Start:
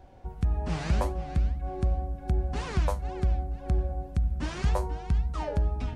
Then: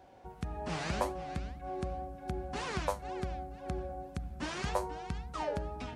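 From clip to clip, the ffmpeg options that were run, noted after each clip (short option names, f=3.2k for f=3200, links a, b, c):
-af "highpass=f=340:p=1"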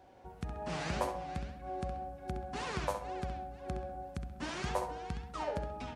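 -filter_complex "[0:a]asplit=2[a][b];[b]adelay=66,lowpass=f=4.8k:p=1,volume=-7dB,asplit=2[c][d];[d]adelay=66,lowpass=f=4.8k:p=1,volume=0.39,asplit=2[e][f];[f]adelay=66,lowpass=f=4.8k:p=1,volume=0.39,asplit=2[g][h];[h]adelay=66,lowpass=f=4.8k:p=1,volume=0.39,asplit=2[i][j];[j]adelay=66,lowpass=f=4.8k:p=1,volume=0.39[k];[a][c][e][g][i][k]amix=inputs=6:normalize=0,volume=-2dB"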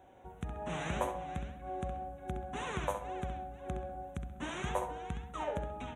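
-af "asuperstop=centerf=4800:order=8:qfactor=2.3"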